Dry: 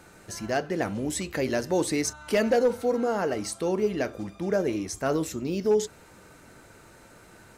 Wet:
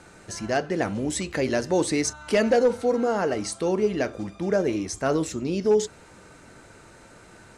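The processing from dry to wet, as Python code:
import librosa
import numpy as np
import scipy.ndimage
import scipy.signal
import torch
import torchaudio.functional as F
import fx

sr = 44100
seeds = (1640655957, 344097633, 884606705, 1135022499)

y = scipy.signal.sosfilt(scipy.signal.butter(4, 10000.0, 'lowpass', fs=sr, output='sos'), x)
y = F.gain(torch.from_numpy(y), 2.5).numpy()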